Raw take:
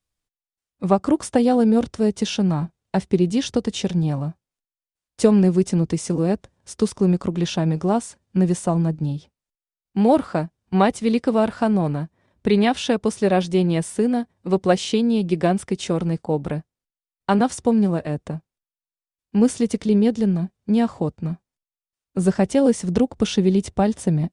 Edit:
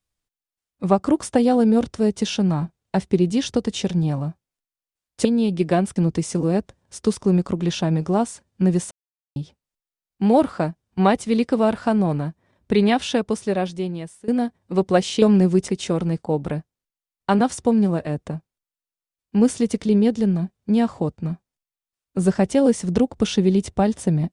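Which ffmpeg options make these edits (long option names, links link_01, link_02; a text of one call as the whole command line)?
ffmpeg -i in.wav -filter_complex "[0:a]asplit=8[link_01][link_02][link_03][link_04][link_05][link_06][link_07][link_08];[link_01]atrim=end=5.252[link_09];[link_02]atrim=start=14.968:end=15.682[link_10];[link_03]atrim=start=5.708:end=8.66,asetpts=PTS-STARTPTS,afade=type=out:start_time=2.948:duration=0.004:curve=hsin[link_11];[link_04]atrim=start=8.66:end=9.11,asetpts=PTS-STARTPTS,volume=0[link_12];[link_05]atrim=start=9.11:end=14.03,asetpts=PTS-STARTPTS,afade=type=in:duration=0.004:curve=hsin,afade=type=out:start_time=3.7:duration=1.22:silence=0.0891251[link_13];[link_06]atrim=start=14.03:end=14.972,asetpts=PTS-STARTPTS,afade=type=in:duration=0.004:curve=hsin:silence=0.0891251[link_14];[link_07]atrim=start=5.248:end=5.712[link_15];[link_08]atrim=start=15.678[link_16];[link_09][link_10]acrossfade=duration=0.004:curve1=hsin:curve2=hsin[link_17];[link_11][link_12][link_13][link_14]concat=n=4:v=0:a=1[link_18];[link_17][link_18]acrossfade=duration=0.004:curve1=hsin:curve2=hsin[link_19];[link_19][link_15]acrossfade=duration=0.004:curve1=hsin:curve2=hsin[link_20];[link_20][link_16]acrossfade=duration=0.004:curve1=hsin:curve2=hsin" out.wav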